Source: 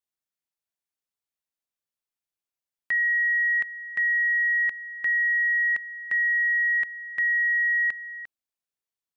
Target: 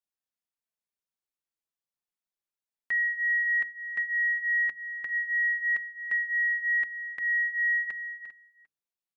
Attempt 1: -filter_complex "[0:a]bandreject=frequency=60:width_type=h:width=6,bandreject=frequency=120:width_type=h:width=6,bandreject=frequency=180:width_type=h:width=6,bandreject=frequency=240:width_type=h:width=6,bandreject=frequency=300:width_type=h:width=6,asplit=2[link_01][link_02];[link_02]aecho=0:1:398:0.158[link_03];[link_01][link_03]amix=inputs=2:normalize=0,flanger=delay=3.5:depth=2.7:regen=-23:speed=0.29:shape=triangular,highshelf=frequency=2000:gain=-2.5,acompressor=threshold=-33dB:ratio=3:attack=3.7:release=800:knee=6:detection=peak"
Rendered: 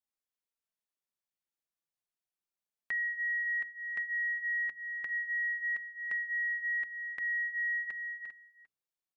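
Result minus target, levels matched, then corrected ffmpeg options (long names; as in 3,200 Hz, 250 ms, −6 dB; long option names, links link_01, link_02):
downward compressor: peak gain reduction +7.5 dB
-filter_complex "[0:a]bandreject=frequency=60:width_type=h:width=6,bandreject=frequency=120:width_type=h:width=6,bandreject=frequency=180:width_type=h:width=6,bandreject=frequency=240:width_type=h:width=6,bandreject=frequency=300:width_type=h:width=6,asplit=2[link_01][link_02];[link_02]aecho=0:1:398:0.158[link_03];[link_01][link_03]amix=inputs=2:normalize=0,flanger=delay=3.5:depth=2.7:regen=-23:speed=0.29:shape=triangular,highshelf=frequency=2000:gain=-2.5"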